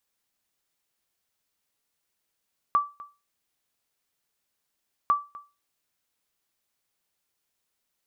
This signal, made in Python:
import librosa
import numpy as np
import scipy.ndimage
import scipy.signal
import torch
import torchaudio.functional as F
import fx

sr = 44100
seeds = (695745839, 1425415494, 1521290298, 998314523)

y = fx.sonar_ping(sr, hz=1160.0, decay_s=0.28, every_s=2.35, pings=2, echo_s=0.25, echo_db=-20.5, level_db=-14.0)